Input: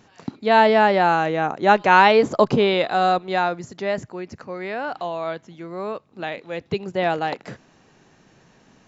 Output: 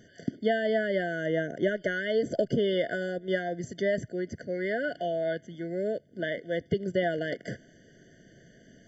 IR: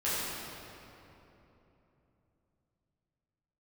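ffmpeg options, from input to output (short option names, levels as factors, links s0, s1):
-af "acompressor=threshold=0.0794:ratio=8,afftfilt=real='re*eq(mod(floor(b*sr/1024/720),2),0)':imag='im*eq(mod(floor(b*sr/1024/720),2),0)':win_size=1024:overlap=0.75"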